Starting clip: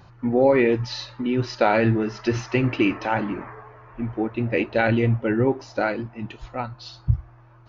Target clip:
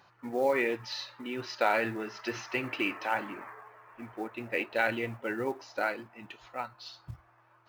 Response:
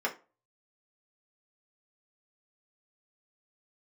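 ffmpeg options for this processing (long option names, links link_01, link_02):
-af "highpass=frequency=1500:poles=1,highshelf=frequency=3000:gain=-7.5,acrusher=bits=7:mode=log:mix=0:aa=0.000001"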